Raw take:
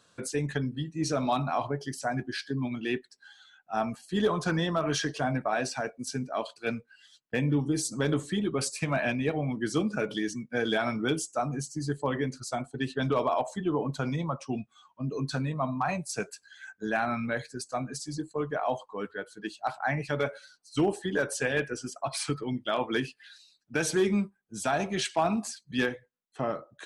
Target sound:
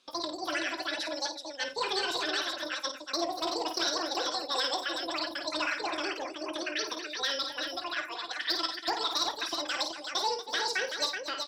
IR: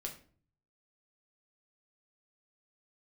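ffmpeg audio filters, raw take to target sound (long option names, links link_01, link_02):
-filter_complex "[0:a]lowpass=frequency=2100:width_type=q:width=7.4,asoftclip=type=hard:threshold=-13.5dB,aecho=1:1:48|123|208|554|884:0.237|0.447|0.133|0.266|0.531,asplit=2[link_01][link_02];[1:a]atrim=start_sample=2205,asetrate=23373,aresample=44100[link_03];[link_02][link_03]afir=irnorm=-1:irlink=0,volume=-15.5dB[link_04];[link_01][link_04]amix=inputs=2:normalize=0,asetrate=103194,aresample=44100,volume=-8dB"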